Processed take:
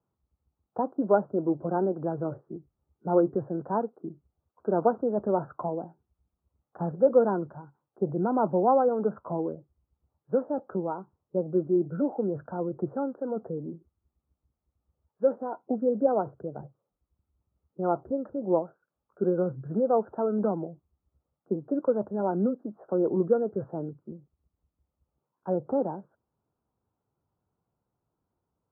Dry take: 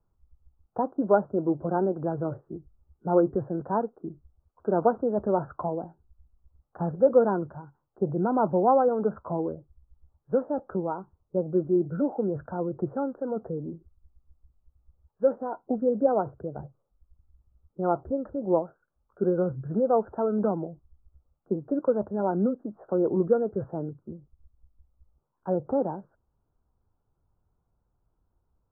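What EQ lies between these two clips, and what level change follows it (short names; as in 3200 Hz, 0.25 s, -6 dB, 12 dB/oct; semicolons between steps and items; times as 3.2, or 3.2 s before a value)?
HPF 140 Hz 12 dB/oct; air absorption 350 m; 0.0 dB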